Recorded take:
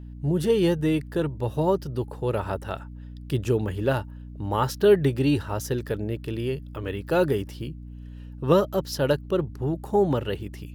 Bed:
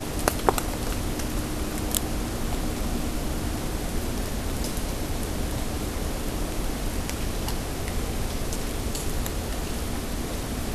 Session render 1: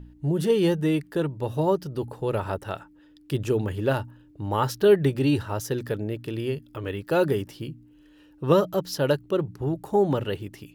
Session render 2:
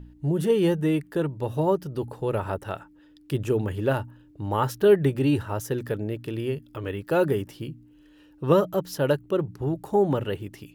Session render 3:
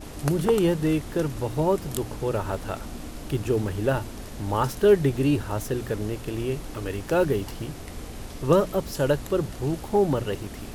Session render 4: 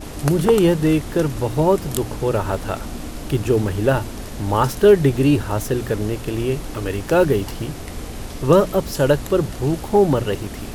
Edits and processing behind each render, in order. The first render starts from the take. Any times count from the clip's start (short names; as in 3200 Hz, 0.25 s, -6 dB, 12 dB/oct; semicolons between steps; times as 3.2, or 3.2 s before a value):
de-hum 60 Hz, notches 4
dynamic EQ 4600 Hz, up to -7 dB, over -52 dBFS, Q 1.5
add bed -9 dB
gain +6.5 dB; limiter -3 dBFS, peak gain reduction 2 dB